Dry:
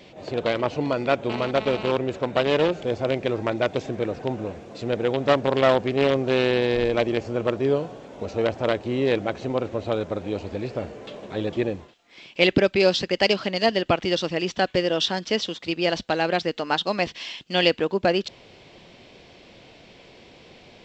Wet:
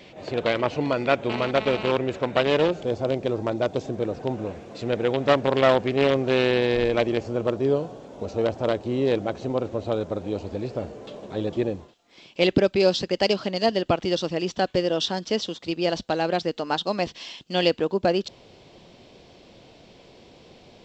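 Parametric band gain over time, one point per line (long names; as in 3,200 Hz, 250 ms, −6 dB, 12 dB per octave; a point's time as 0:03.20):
parametric band 2,100 Hz 1.3 octaves
0:02.37 +2.5 dB
0:03.08 −9 dB
0:03.96 −9 dB
0:04.59 +0.5 dB
0:06.95 +0.5 dB
0:07.45 −7 dB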